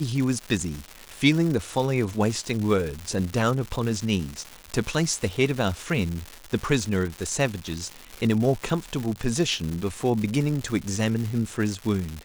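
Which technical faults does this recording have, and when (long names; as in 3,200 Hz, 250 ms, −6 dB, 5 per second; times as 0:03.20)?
surface crackle 290 per second −29 dBFS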